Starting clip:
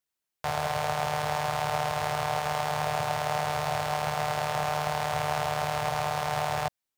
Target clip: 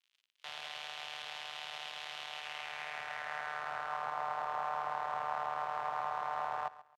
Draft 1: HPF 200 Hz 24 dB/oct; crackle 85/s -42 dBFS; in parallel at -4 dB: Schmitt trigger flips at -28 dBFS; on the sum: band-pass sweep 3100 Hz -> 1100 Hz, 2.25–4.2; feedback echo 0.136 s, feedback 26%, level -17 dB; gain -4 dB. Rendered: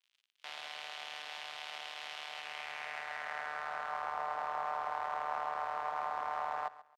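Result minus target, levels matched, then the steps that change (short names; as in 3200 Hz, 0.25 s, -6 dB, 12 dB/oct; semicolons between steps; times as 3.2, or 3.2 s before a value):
125 Hz band -5.0 dB
change: HPF 64 Hz 24 dB/oct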